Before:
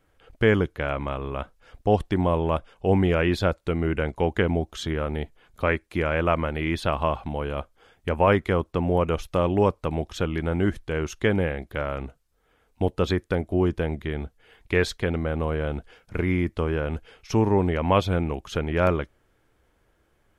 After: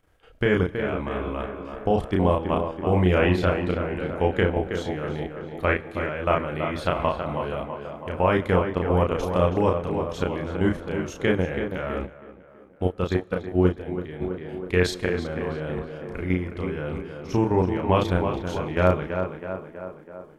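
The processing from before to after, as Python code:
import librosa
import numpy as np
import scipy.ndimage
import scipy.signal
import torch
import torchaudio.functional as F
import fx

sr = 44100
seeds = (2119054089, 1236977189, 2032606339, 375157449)

y = fx.level_steps(x, sr, step_db=11)
y = fx.doubler(y, sr, ms=33.0, db=-3)
y = fx.echo_tape(y, sr, ms=326, feedback_pct=66, wet_db=-6.0, lp_hz=2200.0, drive_db=3.0, wow_cents=35)
y = fx.rev_schroeder(y, sr, rt60_s=1.4, comb_ms=27, drr_db=19.5)
y = fx.upward_expand(y, sr, threshold_db=-37.0, expansion=1.5, at=(12.05, 14.2), fade=0.02)
y = y * 10.0 ** (1.5 / 20.0)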